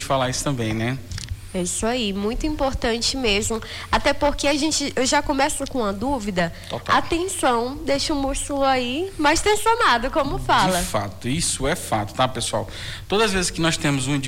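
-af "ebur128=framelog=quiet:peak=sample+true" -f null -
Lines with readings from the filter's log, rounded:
Integrated loudness:
  I:         -21.5 LUFS
  Threshold: -31.6 LUFS
Loudness range:
  LRA:         3.1 LU
  Threshold: -41.4 LUFS
  LRA low:   -23.1 LUFS
  LRA high:  -20.0 LUFS
Sample peak:
  Peak:       -6.7 dBFS
True peak:
  Peak:       -6.7 dBFS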